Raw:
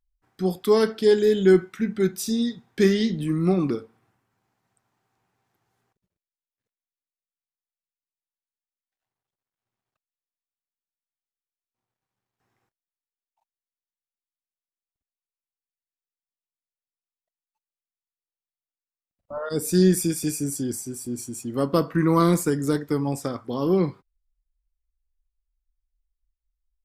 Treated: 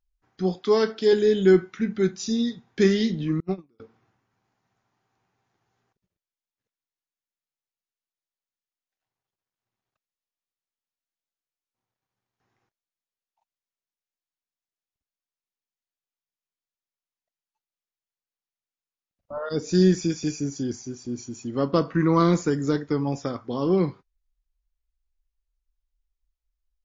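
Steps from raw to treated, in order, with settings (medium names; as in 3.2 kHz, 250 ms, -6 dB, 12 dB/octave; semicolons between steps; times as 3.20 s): 0.54–1.13 s: high-pass 220 Hz 6 dB/octave; 3.40–3.80 s: gate -17 dBFS, range -41 dB; MP3 40 kbps 16 kHz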